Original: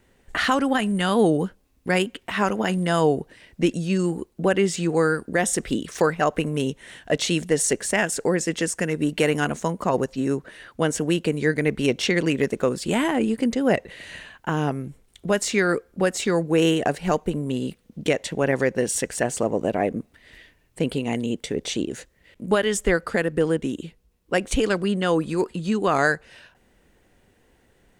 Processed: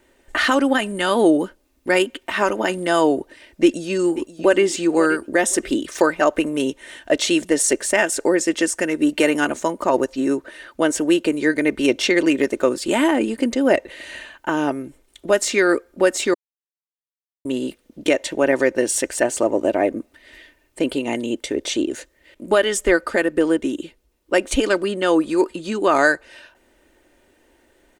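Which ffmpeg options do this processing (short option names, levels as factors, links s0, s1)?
-filter_complex "[0:a]asplit=2[s0][s1];[s1]afade=t=in:st=3.63:d=0.01,afade=t=out:st=4.63:d=0.01,aecho=0:1:530|1060|1590:0.199526|0.0498816|0.0124704[s2];[s0][s2]amix=inputs=2:normalize=0,asplit=3[s3][s4][s5];[s3]atrim=end=16.34,asetpts=PTS-STARTPTS,afade=t=out:st=16.336:d=0.004:c=hsin[s6];[s4]atrim=start=16.34:end=17.45,asetpts=PTS-STARTPTS,volume=0[s7];[s5]atrim=start=17.45,asetpts=PTS-STARTPTS,afade=t=in:d=0.004:c=hsin[s8];[s6][s7][s8]concat=n=3:v=0:a=1,lowshelf=f=250:t=q:w=1.5:g=-7,aecho=1:1:3.3:0.45,volume=1.41"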